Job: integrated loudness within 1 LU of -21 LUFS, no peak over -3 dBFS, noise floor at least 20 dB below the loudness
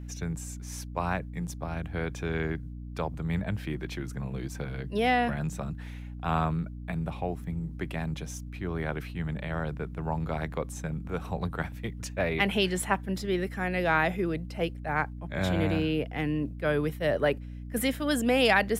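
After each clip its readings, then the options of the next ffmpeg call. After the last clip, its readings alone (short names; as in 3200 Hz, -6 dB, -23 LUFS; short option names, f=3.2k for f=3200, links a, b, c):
hum 60 Hz; harmonics up to 300 Hz; hum level -37 dBFS; loudness -30.5 LUFS; peak -10.0 dBFS; loudness target -21.0 LUFS
-> -af "bandreject=f=60:t=h:w=4,bandreject=f=120:t=h:w=4,bandreject=f=180:t=h:w=4,bandreject=f=240:t=h:w=4,bandreject=f=300:t=h:w=4"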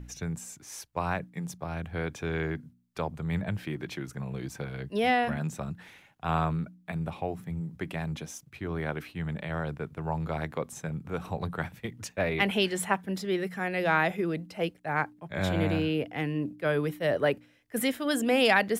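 hum none; loudness -31.0 LUFS; peak -10.0 dBFS; loudness target -21.0 LUFS
-> -af "volume=10dB,alimiter=limit=-3dB:level=0:latency=1"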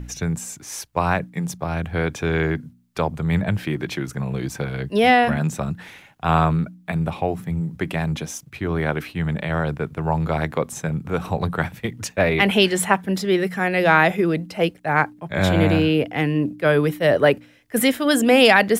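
loudness -21.0 LUFS; peak -3.0 dBFS; noise floor -50 dBFS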